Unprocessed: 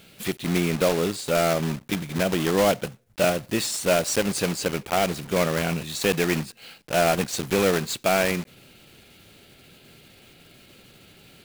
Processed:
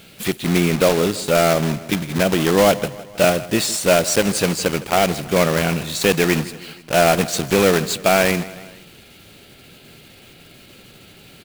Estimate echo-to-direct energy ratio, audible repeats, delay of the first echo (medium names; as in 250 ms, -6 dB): -16.5 dB, 3, 159 ms